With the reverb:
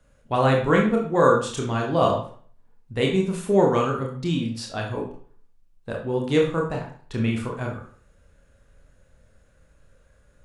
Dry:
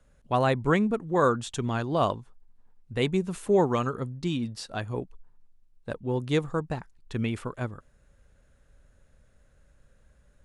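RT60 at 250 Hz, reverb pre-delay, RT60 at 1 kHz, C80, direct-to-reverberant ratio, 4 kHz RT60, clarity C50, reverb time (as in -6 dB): 0.50 s, 23 ms, 0.45 s, 10.5 dB, -1.0 dB, 0.40 s, 5.5 dB, 0.45 s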